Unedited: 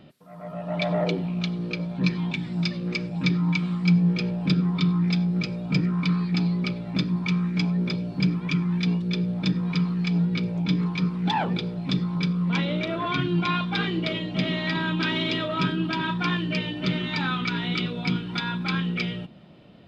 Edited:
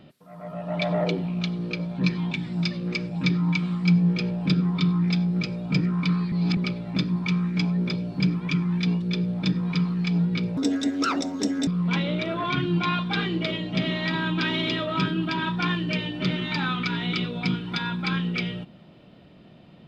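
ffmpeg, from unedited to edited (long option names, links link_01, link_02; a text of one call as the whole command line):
ffmpeg -i in.wav -filter_complex "[0:a]asplit=5[link_01][link_02][link_03][link_04][link_05];[link_01]atrim=end=6.322[link_06];[link_02]atrim=start=6.318:end=6.572,asetpts=PTS-STARTPTS,areverse[link_07];[link_03]atrim=start=6.568:end=10.574[link_08];[link_04]atrim=start=10.57:end=12.29,asetpts=PTS-STARTPTS,asetrate=68796,aresample=44100,atrim=end_sample=48623,asetpts=PTS-STARTPTS[link_09];[link_05]atrim=start=12.286[link_10];[link_06][link_07]acrossfade=duration=0.004:curve1=hsin:curve2=hsin[link_11];[link_11][link_08]acrossfade=duration=0.004:curve1=hsin:curve2=hsin[link_12];[link_12][link_09]acrossfade=duration=0.004:curve1=hsin:curve2=hsin[link_13];[link_13][link_10]acrossfade=duration=0.004:curve1=hsin:curve2=hsin" out.wav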